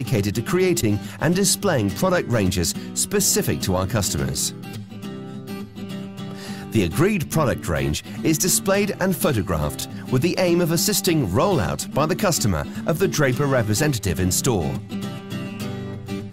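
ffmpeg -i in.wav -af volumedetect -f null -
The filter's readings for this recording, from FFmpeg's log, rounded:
mean_volume: -21.7 dB
max_volume: -6.7 dB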